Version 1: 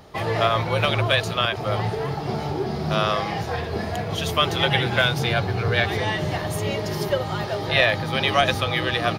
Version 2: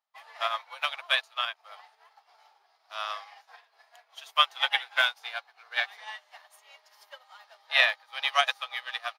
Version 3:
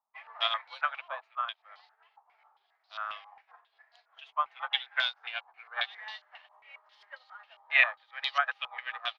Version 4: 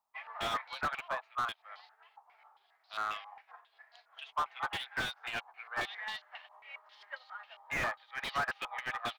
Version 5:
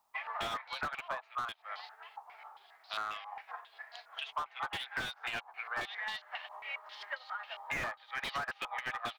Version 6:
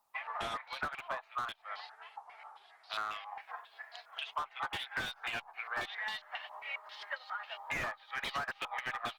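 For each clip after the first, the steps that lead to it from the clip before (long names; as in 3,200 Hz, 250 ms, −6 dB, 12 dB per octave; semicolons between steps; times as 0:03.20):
inverse Chebyshev high-pass filter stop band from 310 Hz, stop band 50 dB; expander for the loud parts 2.5 to 1, over −42 dBFS; level +1 dB
speech leveller within 4 dB 0.5 s; low-pass on a step sequencer 7.4 Hz 980–4,300 Hz; level −8.5 dB
slew-rate limiting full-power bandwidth 32 Hz; level +3 dB
downward compressor 4 to 1, threshold −47 dBFS, peak gain reduction 15.5 dB; level +10 dB
Opus 24 kbit/s 48,000 Hz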